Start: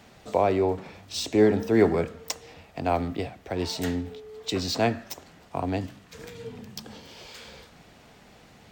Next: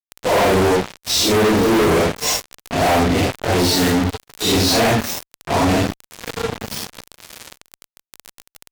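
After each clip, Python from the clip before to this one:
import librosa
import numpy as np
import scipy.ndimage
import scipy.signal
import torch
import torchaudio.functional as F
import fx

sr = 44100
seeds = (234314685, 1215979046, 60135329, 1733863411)

y = fx.phase_scramble(x, sr, seeds[0], window_ms=200)
y = fx.dmg_crackle(y, sr, seeds[1], per_s=33.0, level_db=-36.0)
y = fx.fuzz(y, sr, gain_db=40.0, gate_db=-38.0)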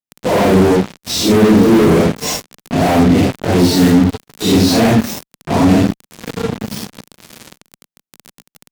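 y = fx.peak_eq(x, sr, hz=200.0, db=11.5, octaves=1.8)
y = F.gain(torch.from_numpy(y), -1.0).numpy()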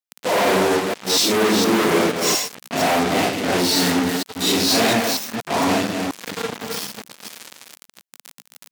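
y = fx.reverse_delay(x, sr, ms=235, wet_db=-4.5)
y = fx.highpass(y, sr, hz=900.0, slope=6)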